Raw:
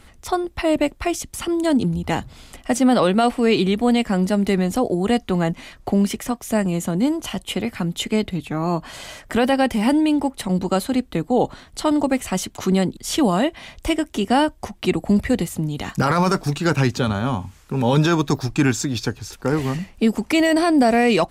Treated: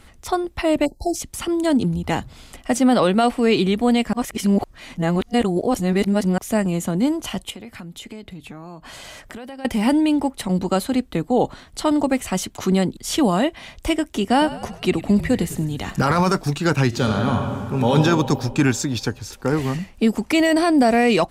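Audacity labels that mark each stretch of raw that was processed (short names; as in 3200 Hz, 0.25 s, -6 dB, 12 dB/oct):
0.850000	1.150000	spectral delete 900–4000 Hz
4.130000	6.380000	reverse
7.500000	9.650000	compressor 5:1, threshold -34 dBFS
14.310000	16.210000	frequency-shifting echo 0.1 s, feedback 58%, per repeat -45 Hz, level -15 dB
16.870000	17.930000	reverb throw, RT60 2.2 s, DRR 2 dB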